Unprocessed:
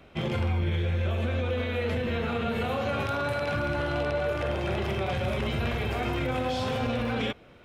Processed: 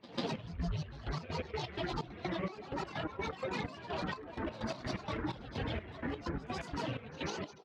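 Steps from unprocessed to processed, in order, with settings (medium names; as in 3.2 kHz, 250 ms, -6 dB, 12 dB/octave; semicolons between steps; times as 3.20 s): rattle on loud lows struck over -31 dBFS, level -24 dBFS; on a send at -4 dB: reverberation RT60 0.80 s, pre-delay 47 ms; on the sum: reverb removal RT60 1.9 s; band-pass 100–3700 Hz; loudspeakers at several distances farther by 32 m -11 dB, 83 m -9 dB; granulator, spray 39 ms, pitch spread up and down by 12 st; compression 5:1, threshold -38 dBFS, peak gain reduction 16.5 dB; trance gate ".xx..xx..x.x.x" 127 bpm -12 dB; pre-echo 144 ms -18 dB; trim +3.5 dB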